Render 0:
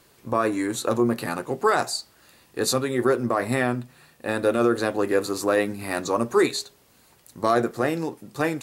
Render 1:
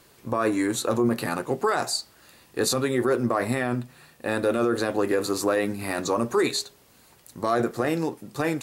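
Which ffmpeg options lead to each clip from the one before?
-af "alimiter=limit=-15dB:level=0:latency=1:release=18,volume=1.5dB"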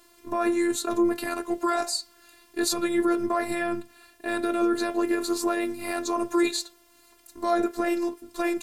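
-af "afftfilt=real='hypot(re,im)*cos(PI*b)':imag='0':win_size=512:overlap=0.75,volume=2dB"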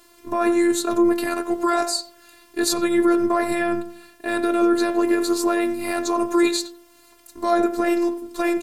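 -filter_complex "[0:a]asplit=2[a][b];[b]adelay=90,lowpass=f=1.6k:p=1,volume=-12.5dB,asplit=2[c][d];[d]adelay=90,lowpass=f=1.6k:p=1,volume=0.39,asplit=2[e][f];[f]adelay=90,lowpass=f=1.6k:p=1,volume=0.39,asplit=2[g][h];[h]adelay=90,lowpass=f=1.6k:p=1,volume=0.39[i];[a][c][e][g][i]amix=inputs=5:normalize=0,volume=4dB"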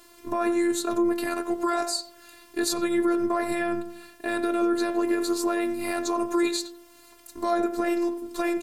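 -af "acompressor=threshold=-30dB:ratio=1.5"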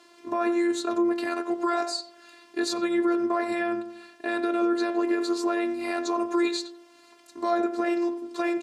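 -af "highpass=200,lowpass=5.6k"

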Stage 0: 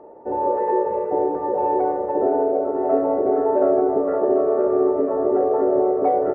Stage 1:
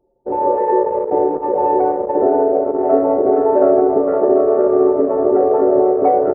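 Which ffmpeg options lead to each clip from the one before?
-af "anlmdn=1000,volume=5.5dB"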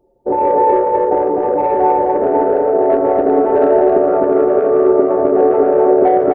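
-filter_complex "[0:a]acontrast=23,alimiter=limit=-7.5dB:level=0:latency=1:release=414,asplit=2[a][b];[b]aecho=0:1:145.8|256.6:0.282|0.708[c];[a][c]amix=inputs=2:normalize=0,volume=1dB"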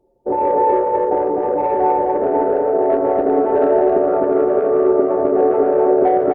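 -af "volume=-3dB" -ar 48000 -c:a libopus -b:a 48k

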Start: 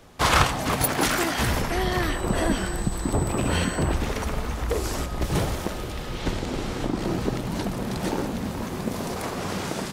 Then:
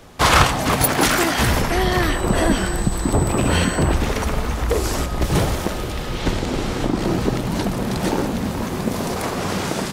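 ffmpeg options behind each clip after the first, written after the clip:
-af "acontrast=58"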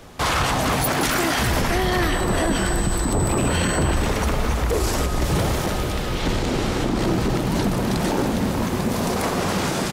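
-af "alimiter=limit=-14dB:level=0:latency=1:release=14,aecho=1:1:281:0.316,volume=1dB"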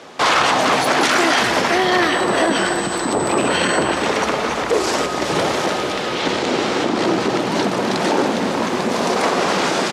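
-af "highpass=310,lowpass=6.2k,volume=7dB"

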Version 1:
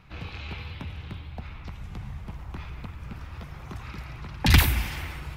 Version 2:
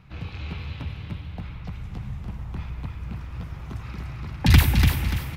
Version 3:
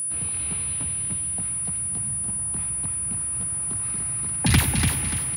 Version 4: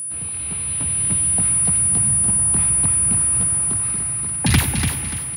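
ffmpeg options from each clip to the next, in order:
-filter_complex "[0:a]equalizer=f=120:w=0.54:g=7,asplit=2[a][b];[b]aecho=0:1:291|582|873|1164:0.562|0.202|0.0729|0.0262[c];[a][c]amix=inputs=2:normalize=0,volume=-2dB"
-af "aeval=exprs='val(0)+0.0562*sin(2*PI*9800*n/s)':c=same,highpass=110"
-af "dynaudnorm=f=210:g=9:m=10.5dB"

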